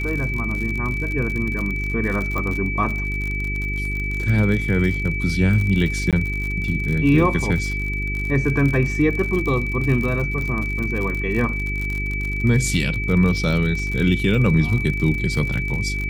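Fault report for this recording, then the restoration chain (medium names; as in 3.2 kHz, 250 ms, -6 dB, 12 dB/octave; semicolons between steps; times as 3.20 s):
crackle 59 per s -25 dBFS
hum 50 Hz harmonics 8 -26 dBFS
whine 2.3 kHz -26 dBFS
2.38 s: pop -13 dBFS
6.11–6.13 s: dropout 17 ms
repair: de-click; band-stop 2.3 kHz, Q 30; de-hum 50 Hz, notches 8; interpolate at 6.11 s, 17 ms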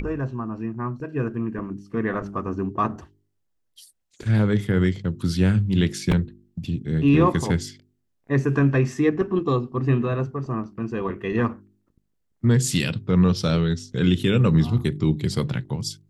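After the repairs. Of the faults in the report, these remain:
nothing left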